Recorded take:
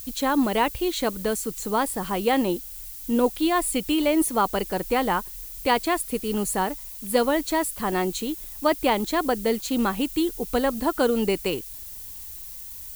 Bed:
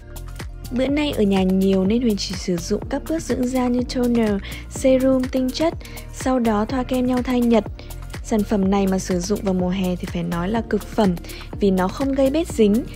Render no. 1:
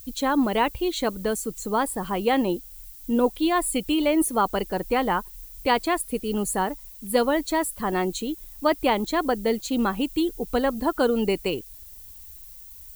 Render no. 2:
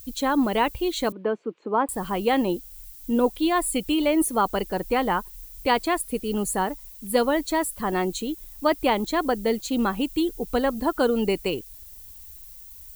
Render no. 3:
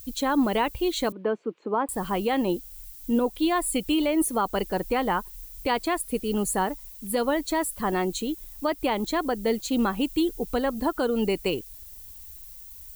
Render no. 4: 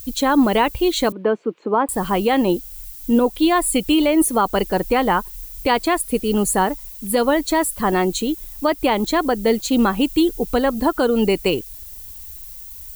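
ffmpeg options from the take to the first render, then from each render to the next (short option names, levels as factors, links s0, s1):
-af "afftdn=nr=8:nf=-39"
-filter_complex "[0:a]asettb=1/sr,asplit=3[s0][s1][s2];[s0]atrim=end=1.124[s3];[s1]atrim=start=1.12:end=1.89,asetpts=PTS-STARTPTS,afade=t=in:d=0.004:c=qsin,afade=t=out:st=0.766:d=0.004:c=qsin,highpass=f=220:w=0.5412,highpass=f=220:w=1.3066,equalizer=f=350:t=q:w=4:g=5,equalizer=f=1000:t=q:w=4:g=3,equalizer=f=1900:t=q:w=4:g=-6,lowpass=f=2500:w=0.5412,lowpass=f=2500:w=1.3066[s4];[s2]atrim=start=1.886[s5];[s3][s4]acrossfade=d=0.004:c1=hsin:c2=qsin[s6];[s6][s5]acrossfade=d=0.004:c1=qsin:c2=hsin"
-af "alimiter=limit=0.188:level=0:latency=1:release=180"
-af "volume=2.37"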